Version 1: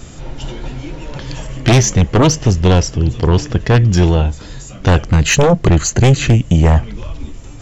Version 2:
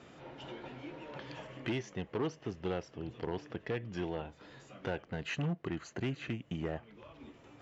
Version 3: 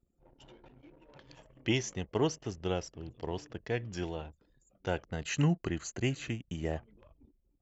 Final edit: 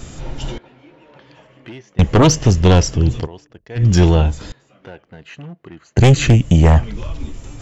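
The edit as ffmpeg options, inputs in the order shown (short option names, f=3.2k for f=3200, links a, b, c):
-filter_complex "[1:a]asplit=2[a][b];[0:a]asplit=4[c][d][e][f];[c]atrim=end=0.582[g];[a]atrim=start=0.578:end=1.992[h];[d]atrim=start=1.988:end=3.28[i];[2:a]atrim=start=3.18:end=3.85[j];[e]atrim=start=3.75:end=4.522[k];[b]atrim=start=4.518:end=5.972[l];[f]atrim=start=5.968[m];[g][h]acrossfade=d=0.004:c1=hsin:c2=hsin[n];[n][i]acrossfade=d=0.004:c1=hsin:c2=hsin[o];[o][j]acrossfade=d=0.1:c1=tri:c2=tri[p];[p][k]acrossfade=d=0.1:c1=tri:c2=tri[q];[q][l]acrossfade=d=0.004:c1=hsin:c2=hsin[r];[r][m]acrossfade=d=0.004:c1=hsin:c2=hsin"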